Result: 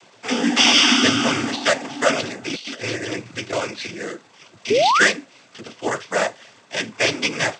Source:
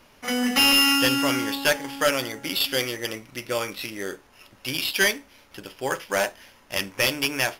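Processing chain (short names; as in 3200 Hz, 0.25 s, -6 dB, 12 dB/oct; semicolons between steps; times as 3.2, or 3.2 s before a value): crackle 460/s -42 dBFS; noise vocoder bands 16; 2.5–3.53 negative-ratio compressor -31 dBFS, ratio -0.5; 4.7–5.08 painted sound rise 380–2100 Hz -20 dBFS; gain +4 dB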